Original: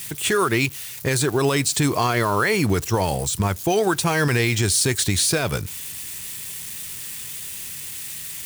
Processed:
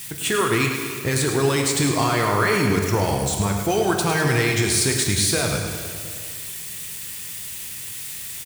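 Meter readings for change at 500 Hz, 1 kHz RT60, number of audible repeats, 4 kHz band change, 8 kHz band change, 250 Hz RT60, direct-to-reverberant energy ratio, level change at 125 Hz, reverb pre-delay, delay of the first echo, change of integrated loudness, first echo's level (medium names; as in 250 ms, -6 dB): +0.5 dB, 2.1 s, 1, +0.5 dB, 0.0 dB, 2.2 s, 1.5 dB, 0.0 dB, 5 ms, 105 ms, +0.5 dB, -8.5 dB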